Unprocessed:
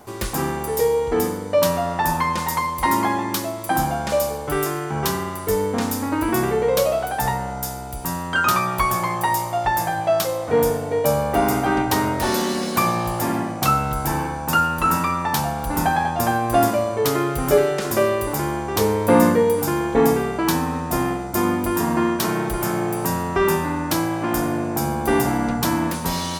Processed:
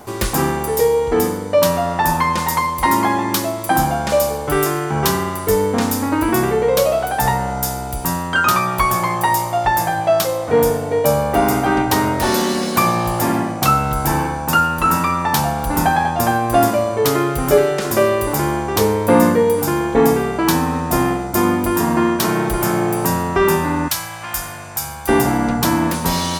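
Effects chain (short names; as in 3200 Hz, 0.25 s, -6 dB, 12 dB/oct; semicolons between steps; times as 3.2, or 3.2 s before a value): 23.88–25.09 passive tone stack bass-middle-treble 10-0-10; in parallel at -1 dB: vocal rider within 5 dB 0.5 s; on the sum: gain -1.5 dB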